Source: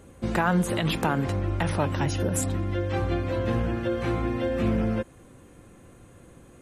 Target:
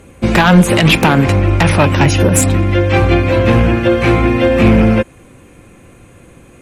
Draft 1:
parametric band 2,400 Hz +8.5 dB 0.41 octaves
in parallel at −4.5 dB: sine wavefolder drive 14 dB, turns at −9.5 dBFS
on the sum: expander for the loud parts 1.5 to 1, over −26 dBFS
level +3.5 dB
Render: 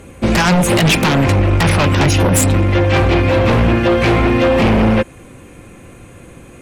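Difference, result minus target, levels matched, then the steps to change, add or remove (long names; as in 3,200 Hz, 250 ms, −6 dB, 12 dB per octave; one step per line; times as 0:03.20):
sine wavefolder: distortion +11 dB
change: sine wavefolder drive 14 dB, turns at −3 dBFS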